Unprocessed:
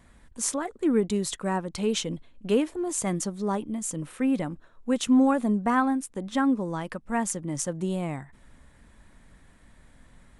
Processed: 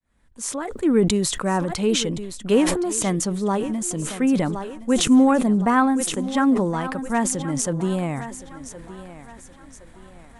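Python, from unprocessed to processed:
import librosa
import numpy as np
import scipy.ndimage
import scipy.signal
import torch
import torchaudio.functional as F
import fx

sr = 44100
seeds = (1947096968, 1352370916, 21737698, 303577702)

y = fx.fade_in_head(x, sr, length_s=0.96)
y = fx.echo_thinned(y, sr, ms=1068, feedback_pct=42, hz=200.0, wet_db=-14)
y = fx.sustainer(y, sr, db_per_s=44.0)
y = y * librosa.db_to_amplitude(5.0)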